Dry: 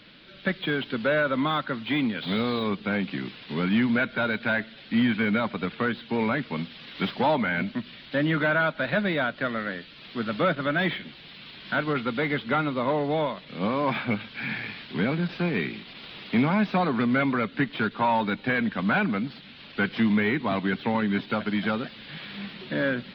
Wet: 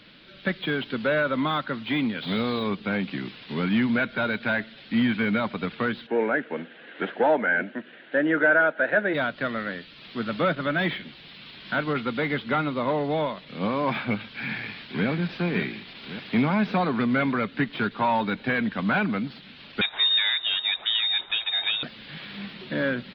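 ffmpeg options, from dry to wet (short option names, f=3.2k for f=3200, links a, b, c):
-filter_complex "[0:a]asplit=3[a][b][c];[a]afade=t=out:st=6.06:d=0.02[d];[b]highpass=310,equalizer=f=330:t=q:w=4:g=6,equalizer=f=480:t=q:w=4:g=7,equalizer=f=690:t=q:w=4:g=4,equalizer=f=1.1k:t=q:w=4:g=-8,equalizer=f=1.6k:t=q:w=4:g=9,equalizer=f=2.3k:t=q:w=4:g=-5,lowpass=f=2.6k:w=0.5412,lowpass=f=2.6k:w=1.3066,afade=t=in:st=6.06:d=0.02,afade=t=out:st=9.13:d=0.02[e];[c]afade=t=in:st=9.13:d=0.02[f];[d][e][f]amix=inputs=3:normalize=0,asplit=2[g][h];[h]afade=t=in:st=14.34:d=0.01,afade=t=out:st=15.07:d=0.01,aecho=0:1:560|1120|1680|2240|2800|3360|3920|4480|5040:0.375837|0.244294|0.158791|0.103214|0.0670893|0.0436081|0.0283452|0.0184244|0.0119759[i];[g][i]amix=inputs=2:normalize=0,asettb=1/sr,asplit=3[j][k][l];[j]atrim=end=19.814[m];[k]atrim=start=19.81:end=21.83,asetpts=PTS-STARTPTS,afade=t=in:d=0.004:c=qsin,afade=t=out:st=2.016:d=0.004:c=qsin,lowpass=f=3.3k:t=q:w=0.5098,lowpass=f=3.3k:t=q:w=0.6013,lowpass=f=3.3k:t=q:w=0.9,lowpass=f=3.3k:t=q:w=2.563,afreqshift=-3900[n];[l]atrim=start=21.826[o];[m][n]acrossfade=d=0.004:c1=hsin:c2=qsin[p];[p][o]acrossfade=d=0.004:c1=qsin:c2=hsin"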